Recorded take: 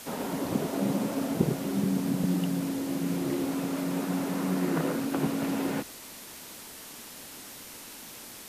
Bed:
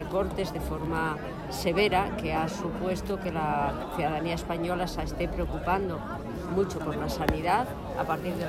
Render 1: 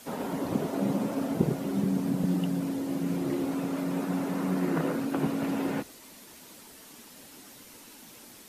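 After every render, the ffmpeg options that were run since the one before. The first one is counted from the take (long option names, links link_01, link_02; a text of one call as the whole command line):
ffmpeg -i in.wav -af "afftdn=noise_reduction=7:noise_floor=-45" out.wav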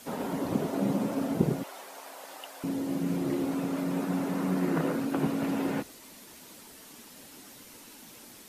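ffmpeg -i in.wav -filter_complex "[0:a]asettb=1/sr,asplit=3[link_01][link_02][link_03];[link_01]atrim=end=1.634[link_04];[link_02]atrim=start=1.63:end=2.64,asetpts=PTS-STARTPTS,afade=type=in:duration=0.004:curve=qsin,afade=type=out:start_time=1.006:duration=0.004:curve=qsin,highpass=frequency=670:width=0.5412,highpass=frequency=670:width=1.3066[link_05];[link_03]atrim=start=2.636[link_06];[link_04][link_05]acrossfade=duration=0.004:curve1=hsin:curve2=qsin[link_07];[link_07][link_06]acrossfade=duration=0.004:curve1=qsin:curve2=hsin" out.wav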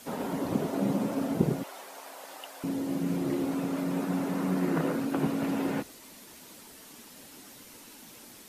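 ffmpeg -i in.wav -af anull out.wav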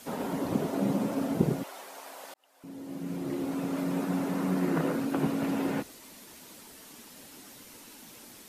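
ffmpeg -i in.wav -filter_complex "[0:a]asplit=2[link_01][link_02];[link_01]atrim=end=2.34,asetpts=PTS-STARTPTS,afade=type=out:start_time=2.336:duration=0.004:curve=hsin[link_03];[link_02]atrim=start=2.34,asetpts=PTS-STARTPTS,afade=type=in:duration=1.47[link_04];[link_03][link_04]concat=n=2:v=0:a=1" out.wav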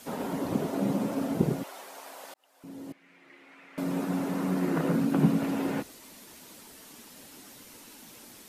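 ffmpeg -i in.wav -filter_complex "[0:a]asettb=1/sr,asplit=3[link_01][link_02][link_03];[link_01]atrim=end=2.924[link_04];[link_02]atrim=start=2.92:end=3.78,asetpts=PTS-STARTPTS,afade=type=in:duration=0.004:curve=qsin,afade=type=out:start_time=0.856:duration=0.004:curve=qsin,bandpass=frequency=2100:width_type=q:width=3.2[link_05];[link_03]atrim=start=3.776[link_06];[link_04][link_05]acrossfade=duration=0.004:curve1=hsin:curve2=qsin[link_07];[link_07][link_06]acrossfade=duration=0.004:curve1=qsin:curve2=hsin,asettb=1/sr,asplit=3[link_08][link_09][link_10];[link_08]atrim=end=4.894[link_11];[link_09]atrim=start=4.89:end=5.38,asetpts=PTS-STARTPTS,afade=type=in:duration=0.004:curve=qsin,afade=type=out:start_time=0.486:duration=0.004:curve=qsin,equalizer=frequency=180:width_type=o:width=0.77:gain=12[link_12];[link_10]atrim=start=5.376[link_13];[link_11][link_12]acrossfade=duration=0.004:curve1=hsin:curve2=qsin[link_14];[link_14][link_13]acrossfade=duration=0.004:curve1=qsin:curve2=hsin" out.wav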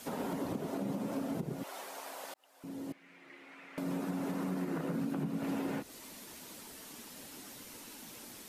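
ffmpeg -i in.wav -af "acompressor=threshold=-34dB:ratio=2,alimiter=level_in=3dB:limit=-24dB:level=0:latency=1:release=181,volume=-3dB" out.wav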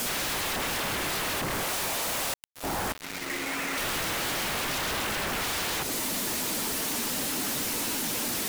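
ffmpeg -i in.wav -af "acrusher=bits=8:mix=0:aa=0.000001,aeval=exprs='0.0447*sin(PI/2*10*val(0)/0.0447)':channel_layout=same" out.wav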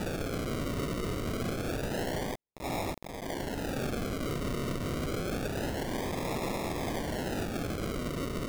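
ffmpeg -i in.wav -af "flanger=delay=15.5:depth=4.6:speed=0.82,acrusher=samples=41:mix=1:aa=0.000001:lfo=1:lforange=24.6:lforate=0.27" out.wav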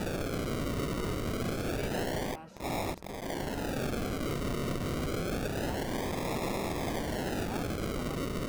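ffmpeg -i in.wav -i bed.wav -filter_complex "[1:a]volume=-19.5dB[link_01];[0:a][link_01]amix=inputs=2:normalize=0" out.wav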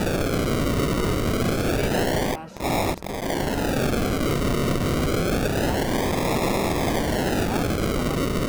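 ffmpeg -i in.wav -af "volume=10.5dB" out.wav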